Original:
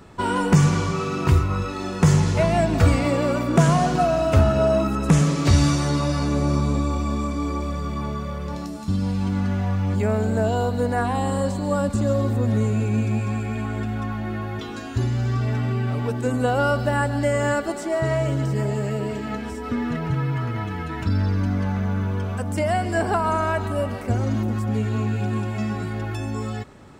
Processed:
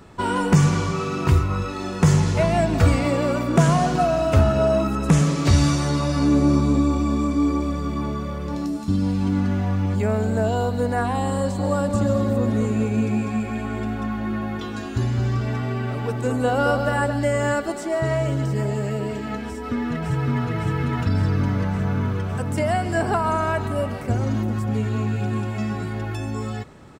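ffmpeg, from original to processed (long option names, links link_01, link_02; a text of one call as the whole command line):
ffmpeg -i in.wav -filter_complex "[0:a]asettb=1/sr,asplit=3[link_01][link_02][link_03];[link_01]atrim=end=6.164[link_04];[link_02]atrim=start=6.16:end=9.86,asetpts=PTS-STARTPTS,afade=type=in:duration=0.004:curve=qsin,afade=type=out:start_time=3.696:duration=0.004:curve=qsin,equalizer=frequency=300:width_type=o:width=0.51:gain=9[link_05];[link_03]atrim=start=9.856[link_06];[link_04][link_05]acrossfade=duration=0.004:curve1=hsin:curve2=qsin[link_07];[link_07][link_06]acrossfade=duration=0.004:curve1=qsin:curve2=hsin,asplit=3[link_08][link_09][link_10];[link_08]afade=type=out:start_time=11.58:duration=0.02[link_11];[link_09]asplit=2[link_12][link_13];[link_13]adelay=218,lowpass=frequency=2000:poles=1,volume=-5dB,asplit=2[link_14][link_15];[link_15]adelay=218,lowpass=frequency=2000:poles=1,volume=0.47,asplit=2[link_16][link_17];[link_17]adelay=218,lowpass=frequency=2000:poles=1,volume=0.47,asplit=2[link_18][link_19];[link_19]adelay=218,lowpass=frequency=2000:poles=1,volume=0.47,asplit=2[link_20][link_21];[link_21]adelay=218,lowpass=frequency=2000:poles=1,volume=0.47,asplit=2[link_22][link_23];[link_23]adelay=218,lowpass=frequency=2000:poles=1,volume=0.47[link_24];[link_12][link_14][link_16][link_18][link_20][link_22][link_24]amix=inputs=7:normalize=0,afade=type=in:start_time=11.58:duration=0.02,afade=type=out:start_time=17.12:duration=0.02[link_25];[link_10]afade=type=in:start_time=17.12:duration=0.02[link_26];[link_11][link_25][link_26]amix=inputs=3:normalize=0,asplit=2[link_27][link_28];[link_28]afade=type=in:start_time=19.46:duration=0.01,afade=type=out:start_time=20.52:duration=0.01,aecho=0:1:560|1120|1680|2240|2800|3360|3920|4480|5040|5600|6160|6720:0.794328|0.595746|0.44681|0.335107|0.25133|0.188498|0.141373|0.10603|0.0795225|0.0596419|0.0447314|0.0335486[link_29];[link_27][link_29]amix=inputs=2:normalize=0" out.wav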